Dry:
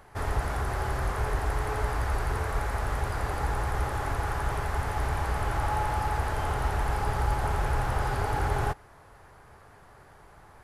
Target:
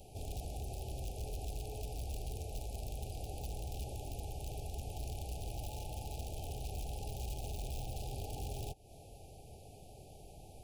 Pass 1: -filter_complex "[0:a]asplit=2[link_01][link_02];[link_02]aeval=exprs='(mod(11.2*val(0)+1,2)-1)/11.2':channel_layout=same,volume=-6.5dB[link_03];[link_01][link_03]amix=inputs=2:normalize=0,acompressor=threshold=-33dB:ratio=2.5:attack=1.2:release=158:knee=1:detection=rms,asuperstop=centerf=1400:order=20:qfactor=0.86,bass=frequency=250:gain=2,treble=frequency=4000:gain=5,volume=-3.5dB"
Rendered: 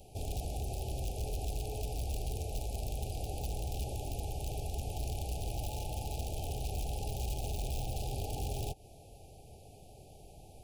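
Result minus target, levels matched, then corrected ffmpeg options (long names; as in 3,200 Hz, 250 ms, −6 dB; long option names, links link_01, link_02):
downward compressor: peak gain reduction −5 dB
-filter_complex "[0:a]asplit=2[link_01][link_02];[link_02]aeval=exprs='(mod(11.2*val(0)+1,2)-1)/11.2':channel_layout=same,volume=-6.5dB[link_03];[link_01][link_03]amix=inputs=2:normalize=0,acompressor=threshold=-41dB:ratio=2.5:attack=1.2:release=158:knee=1:detection=rms,asuperstop=centerf=1400:order=20:qfactor=0.86,bass=frequency=250:gain=2,treble=frequency=4000:gain=5,volume=-3.5dB"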